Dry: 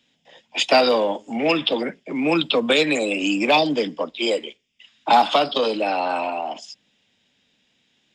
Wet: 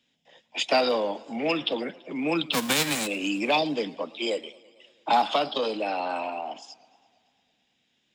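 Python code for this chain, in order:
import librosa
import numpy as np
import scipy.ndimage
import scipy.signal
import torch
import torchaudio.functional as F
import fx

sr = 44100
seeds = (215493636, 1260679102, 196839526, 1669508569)

y = fx.envelope_flatten(x, sr, power=0.3, at=(2.52, 3.06), fade=0.02)
y = fx.echo_warbled(y, sr, ms=111, feedback_pct=70, rate_hz=2.8, cents=128, wet_db=-23)
y = y * librosa.db_to_amplitude(-6.5)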